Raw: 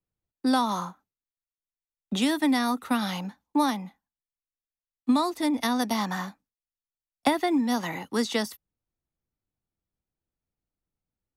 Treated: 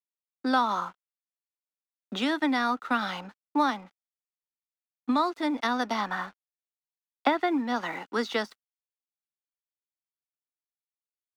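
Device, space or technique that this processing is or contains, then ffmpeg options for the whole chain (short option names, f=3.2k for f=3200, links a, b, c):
pocket radio on a weak battery: -filter_complex "[0:a]asettb=1/sr,asplit=3[a][b][c];[a]atrim=end=6.014[d];[b]atrim=start=6.01:end=7.76,asetpts=PTS-STARTPTS,afade=t=in:d=0.004:c=qsin,afade=t=out:st=1.746:d=0.004:c=qsin,lowpass=4.8k[e];[c]atrim=start=7.756[f];[d][e]acrossfade=d=0.004:c1=hsin:c2=qsin[g];[g][f]acrossfade=d=0.004:c1=qsin:c2=hsin,highpass=290,lowpass=4.1k,aeval=exprs='sgn(val(0))*max(abs(val(0))-0.00211,0)':c=same,equalizer=f=1.4k:t=o:w=0.37:g=8"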